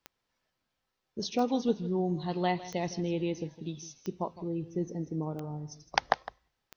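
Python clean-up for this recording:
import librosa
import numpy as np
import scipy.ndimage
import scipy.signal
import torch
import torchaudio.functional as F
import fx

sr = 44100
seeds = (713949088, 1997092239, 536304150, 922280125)

y = fx.fix_declick_ar(x, sr, threshold=10.0)
y = fx.fix_echo_inverse(y, sr, delay_ms=159, level_db=-16.0)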